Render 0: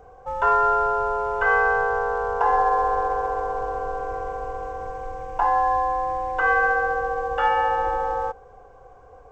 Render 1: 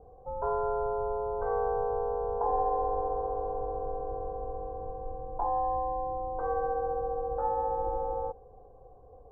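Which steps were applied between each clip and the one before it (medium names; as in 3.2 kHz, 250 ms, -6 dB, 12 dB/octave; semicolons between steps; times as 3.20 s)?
Bessel low-pass 570 Hz, order 6; trim -2.5 dB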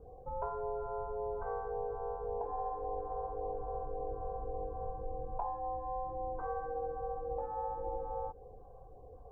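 compression, threshold -35 dBFS, peak gain reduction 10.5 dB; LFO notch sine 1.8 Hz 280–1500 Hz; trim +1.5 dB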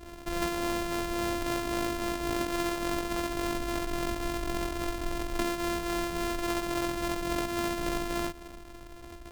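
sorted samples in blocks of 128 samples; trim +7 dB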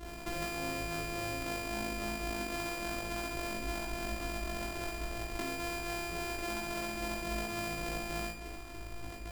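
compression 2.5:1, threshold -38 dBFS, peak gain reduction 9 dB; on a send: flutter echo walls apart 3.2 m, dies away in 0.45 s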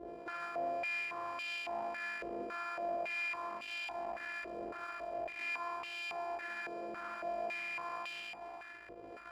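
harmonic tremolo 1.7 Hz, depth 50%, crossover 950 Hz; saturation -38.5 dBFS, distortion -12 dB; step-sequenced band-pass 3.6 Hz 490–2900 Hz; trim +13 dB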